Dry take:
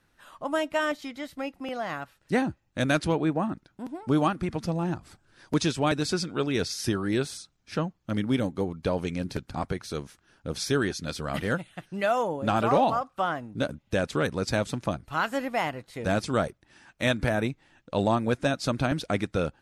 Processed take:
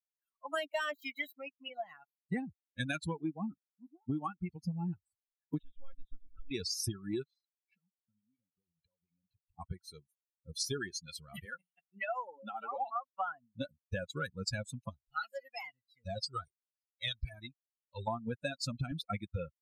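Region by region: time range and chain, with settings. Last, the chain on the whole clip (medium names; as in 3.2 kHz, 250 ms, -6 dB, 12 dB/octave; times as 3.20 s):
0.57–1.35 s: high-pass 270 Hz + waveshaping leveller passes 2
5.58–6.51 s: compression 3:1, threshold -35 dBFS + high-pass 150 Hz + monotone LPC vocoder at 8 kHz 270 Hz
7.23–9.59 s: low-pass 3 kHz + compression 16:1, threshold -40 dBFS
11.45–12.96 s: high-pass 230 Hz + hum notches 60/120/180/240/300 Hz + compression 2.5:1, threshold -26 dBFS
14.89–18.08 s: peaking EQ 4.8 kHz +10 dB 0.55 oct + Shepard-style flanger falling 1.2 Hz
whole clip: expander on every frequency bin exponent 3; peaking EQ 470 Hz -7.5 dB 0.78 oct; compression 10:1, threshold -39 dBFS; trim +6.5 dB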